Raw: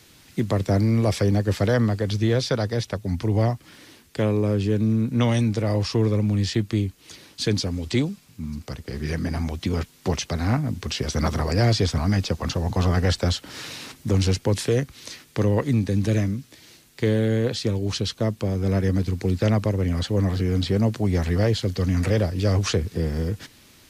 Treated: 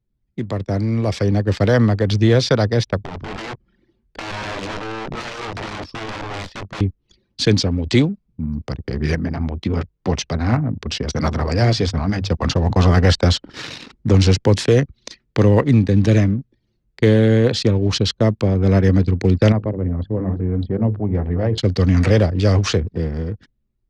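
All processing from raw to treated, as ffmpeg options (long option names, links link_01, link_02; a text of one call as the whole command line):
ffmpeg -i in.wav -filter_complex "[0:a]asettb=1/sr,asplit=3[link_01][link_02][link_03];[link_01]atrim=end=2.984[link_04];[link_02]atrim=start=2.98:end=6.81,asetpts=PTS-STARTPTS,afade=type=in:duration=0.004:curve=qsin,afade=type=out:start_time=3.826:duration=0.004:curve=qsin,aeval=exprs='(mod(13.3*val(0)+1,2)-1)/13.3':channel_layout=same,acompressor=threshold=-34dB:ratio=8:attack=3.2:release=140:knee=1:detection=peak,asplit=2[link_05][link_06];[link_06]adelay=21,volume=-8dB[link_07];[link_05][link_07]amix=inputs=2:normalize=0,atrim=end_sample=168903[link_08];[link_03]atrim=start=6.806[link_09];[link_04][link_08]acrossfade=duration=0.004:curve1=hsin:curve2=qsin[link_10];[link_10][link_09]acrossfade=duration=0.004:curve1=qsin:curve2=hsin,asettb=1/sr,asplit=3[link_11][link_12][link_13];[link_11]atrim=end=9.154[link_14];[link_12]atrim=start=9.15:end=12.32,asetpts=PTS-STARTPTS,afade=type=in:duration=0.004:curve=qsin,afade=type=out:start_time=3.166:duration=0.004:curve=qsin,bandreject=frequency=50:width_type=h:width=6,bandreject=frequency=100:width_type=h:width=6,flanger=delay=3.8:depth=5.6:regen=-70:speed=1.1:shape=sinusoidal[link_15];[link_13]atrim=start=12.316[link_16];[link_14][link_15]acrossfade=duration=0.004:curve1=hsin:curve2=qsin[link_17];[link_17][link_16]acrossfade=duration=0.004:curve1=qsin:curve2=hsin,asettb=1/sr,asplit=3[link_18][link_19][link_20];[link_18]atrim=end=19.524[link_21];[link_19]atrim=start=19.52:end=21.58,asetpts=PTS-STARTPTS,afade=type=in:duration=0.004:curve=qsin,afade=type=out:start_time=2.056:duration=0.004:curve=qsin,lowpass=frequency=1100:poles=1,bandreject=frequency=50:width_type=h:width=6,bandreject=frequency=100:width_type=h:width=6,bandreject=frequency=150:width_type=h:width=6,bandreject=frequency=200:width_type=h:width=6,bandreject=frequency=250:width_type=h:width=6,bandreject=frequency=300:width_type=h:width=6,bandreject=frequency=350:width_type=h:width=6,bandreject=frequency=400:width_type=h:width=6,bandreject=frequency=450:width_type=h:width=6,bandreject=frequency=500:width_type=h:width=6,flanger=delay=0.9:depth=9.3:regen=84:speed=1:shape=sinusoidal[link_22];[link_20]atrim=start=21.576[link_23];[link_21][link_22]acrossfade=duration=0.004:curve1=hsin:curve2=qsin[link_24];[link_24][link_23]acrossfade=duration=0.004:curve1=qsin:curve2=hsin,acrossover=split=7300[link_25][link_26];[link_26]acompressor=threshold=-58dB:ratio=4:attack=1:release=60[link_27];[link_25][link_27]amix=inputs=2:normalize=0,anlmdn=3.98,dynaudnorm=framelen=270:gausssize=11:maxgain=11.5dB,volume=-1.5dB" out.wav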